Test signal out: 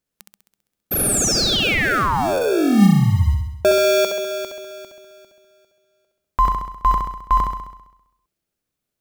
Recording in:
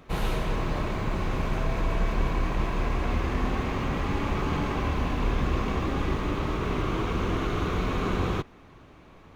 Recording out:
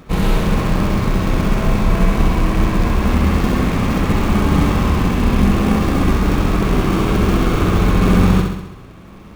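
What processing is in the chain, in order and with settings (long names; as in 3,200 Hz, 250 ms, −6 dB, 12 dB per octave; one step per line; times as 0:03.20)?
parametric band 200 Hz +9.5 dB 0.22 octaves
in parallel at −4.5 dB: sample-rate reduction 1,000 Hz, jitter 0%
on the sum: flutter between parallel walls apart 11.3 metres, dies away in 0.86 s
level +6.5 dB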